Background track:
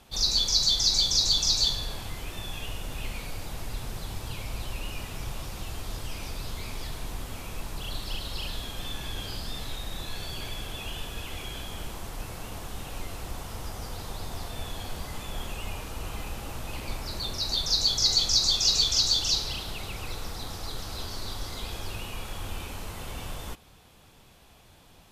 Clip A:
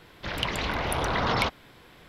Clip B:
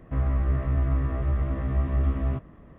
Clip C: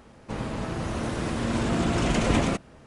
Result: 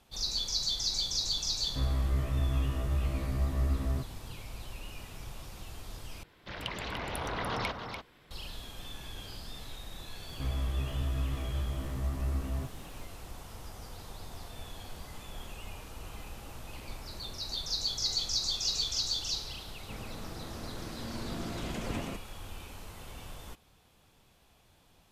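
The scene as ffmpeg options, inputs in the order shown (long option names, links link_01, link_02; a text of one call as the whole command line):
ffmpeg -i bed.wav -i cue0.wav -i cue1.wav -i cue2.wav -filter_complex "[2:a]asplit=2[link_01][link_02];[0:a]volume=-8.5dB[link_03];[1:a]aecho=1:1:292:0.447[link_04];[link_02]aeval=exprs='val(0)+0.5*0.00794*sgn(val(0))':channel_layout=same[link_05];[link_03]asplit=2[link_06][link_07];[link_06]atrim=end=6.234[link_08];[link_04]atrim=end=2.08,asetpts=PTS-STARTPTS,volume=-9dB[link_09];[link_07]atrim=start=8.306[link_10];[link_01]atrim=end=2.78,asetpts=PTS-STARTPTS,volume=-5.5dB,afade=type=in:duration=0.004:curve=hsin,afade=type=out:start_time=2.776:duration=0.004:curve=hsin,adelay=1640[link_11];[link_05]atrim=end=2.78,asetpts=PTS-STARTPTS,volume=-9dB,afade=type=in:duration=0.004:curve=hsin,afade=type=out:start_time=2.776:duration=0.004:curve=hsin,adelay=10280[link_12];[3:a]atrim=end=2.86,asetpts=PTS-STARTPTS,volume=-14dB,afade=type=in:duration=0.004:curve=hsin,afade=type=out:start_time=2.856:duration=0.004:curve=hsin,adelay=19600[link_13];[link_08][link_09]acrossfade=duration=0.004:curve1=hsin:curve2=hsin[link_14];[link_14][link_10]acrossfade=duration=0.004:curve1=hsin:curve2=hsin[link_15];[link_15][link_11][link_12][link_13]amix=inputs=4:normalize=0" out.wav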